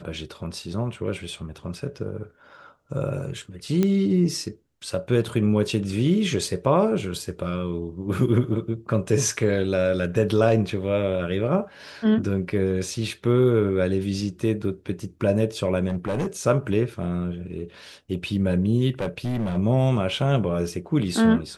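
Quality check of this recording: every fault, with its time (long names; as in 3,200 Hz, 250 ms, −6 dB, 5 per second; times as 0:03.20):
0:03.83: click −10 dBFS
0:15.89–0:16.27: clipping −21.5 dBFS
0:18.99–0:19.58: clipping −22 dBFS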